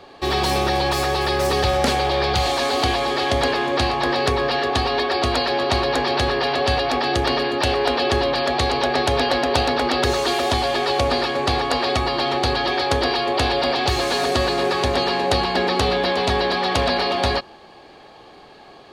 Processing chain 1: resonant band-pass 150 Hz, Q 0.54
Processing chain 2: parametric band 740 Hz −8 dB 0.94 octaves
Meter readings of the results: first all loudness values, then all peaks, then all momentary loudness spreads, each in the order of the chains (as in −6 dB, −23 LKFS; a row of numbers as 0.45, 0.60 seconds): −27.5, −22.0 LKFS; −12.0, −5.5 dBFS; 2, 1 LU